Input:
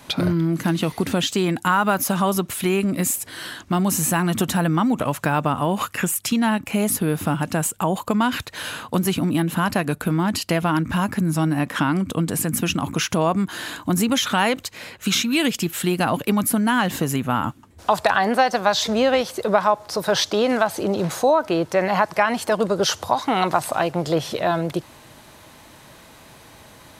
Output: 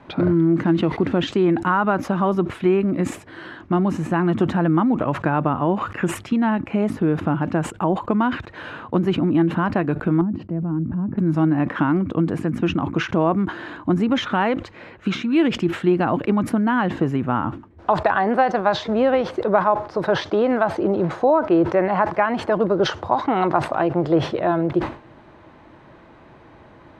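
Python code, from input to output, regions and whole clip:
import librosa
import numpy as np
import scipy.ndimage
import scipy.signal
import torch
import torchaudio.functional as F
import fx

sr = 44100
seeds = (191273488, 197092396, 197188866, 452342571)

y = fx.chain(x, sr, fx.bandpass_q(hz=170.0, q=1.5),
    fx.transient(attack_db=-4, sustain_db=7), at=(10.21, 11.18))
y = scipy.signal.sosfilt(scipy.signal.butter(2, 1700.0, 'lowpass', fs=sr, output='sos'), y)
y = fx.peak_eq(y, sr, hz=340.0, db=7.0, octaves=0.35)
y = fx.sustainer(y, sr, db_per_s=140.0)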